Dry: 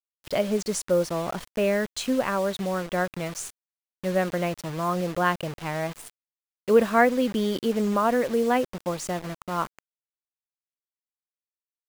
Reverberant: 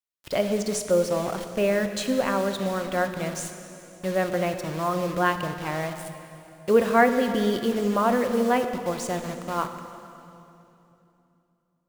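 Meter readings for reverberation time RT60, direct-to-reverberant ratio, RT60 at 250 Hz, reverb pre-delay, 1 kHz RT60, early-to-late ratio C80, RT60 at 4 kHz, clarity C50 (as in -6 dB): 3.0 s, 7.0 dB, 3.4 s, 3 ms, 2.8 s, 9.0 dB, 2.7 s, 8.0 dB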